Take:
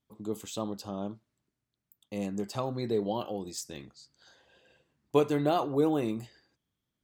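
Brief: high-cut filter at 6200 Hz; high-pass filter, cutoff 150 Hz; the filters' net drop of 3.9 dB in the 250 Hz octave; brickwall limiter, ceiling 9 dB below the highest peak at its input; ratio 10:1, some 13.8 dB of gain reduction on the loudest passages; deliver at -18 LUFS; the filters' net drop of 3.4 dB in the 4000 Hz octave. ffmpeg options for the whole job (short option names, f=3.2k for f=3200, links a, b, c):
-af "highpass=150,lowpass=6.2k,equalizer=f=250:t=o:g=-4.5,equalizer=f=4k:t=o:g=-3.5,acompressor=threshold=-34dB:ratio=10,volume=25dB,alimiter=limit=-6dB:level=0:latency=1"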